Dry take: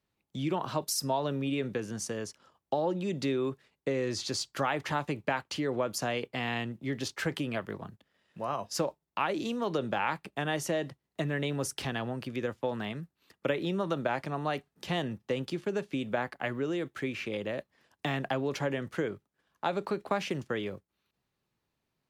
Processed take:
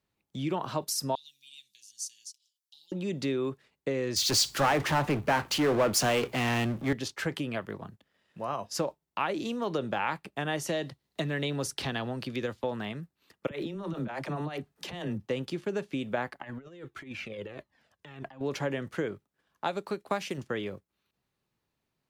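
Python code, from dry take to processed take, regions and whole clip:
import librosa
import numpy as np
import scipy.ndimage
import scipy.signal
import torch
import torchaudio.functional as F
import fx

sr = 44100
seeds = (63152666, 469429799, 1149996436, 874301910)

y = fx.chain(x, sr, fx.cheby2_highpass(hz=1500.0, order=4, stop_db=50),
    fx.comb(ms=6.0, depth=0.49), at=(1.15, 2.92))
y = fx.chain(y, sr, fx.power_curve(exponent=0.5),
    fx.band_widen(depth_pct=70), at=(4.16, 6.93))
y = fx.chain(y, sr, fx.peak_eq(hz=4100.0, db=6.5, octaves=0.62),
    fx.band_squash(depth_pct=40), at=(10.68, 12.64))
y = fx.chain(y, sr, fx.over_compress(threshold_db=-34.0, ratio=-0.5),
    fx.dispersion(late='lows', ms=41.0, hz=370.0), at=(13.47, 15.27))
y = fx.chain(y, sr, fx.high_shelf(hz=6400.0, db=-5.5),
    fx.over_compress(threshold_db=-36.0, ratio=-0.5),
    fx.comb_cascade(direction='falling', hz=1.6), at=(16.4, 18.41))
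y = fx.chain(y, sr, fx.high_shelf(hz=4700.0, db=9.5),
    fx.upward_expand(threshold_db=-46.0, expansion=1.5), at=(19.67, 20.38))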